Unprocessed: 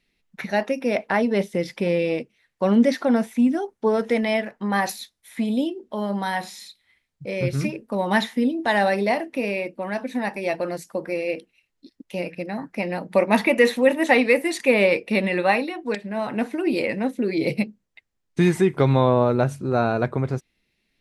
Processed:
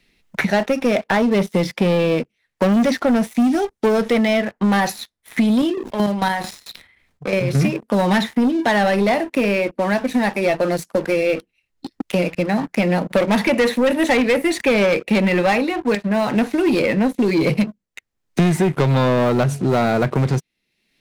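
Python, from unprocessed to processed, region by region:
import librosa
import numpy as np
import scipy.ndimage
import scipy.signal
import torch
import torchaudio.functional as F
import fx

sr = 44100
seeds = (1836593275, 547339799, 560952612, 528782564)

y = fx.chain(x, sr, fx.chopper(hz=4.5, depth_pct=65, duty_pct=30),
    fx.sustainer(db_per_s=76.0), at=(5.55, 7.55))
y = fx.dynamic_eq(y, sr, hz=160.0, q=2.2, threshold_db=-37.0, ratio=4.0, max_db=6)
y = fx.leveller(y, sr, passes=3)
y = fx.band_squash(y, sr, depth_pct=70)
y = F.gain(torch.from_numpy(y), -5.0).numpy()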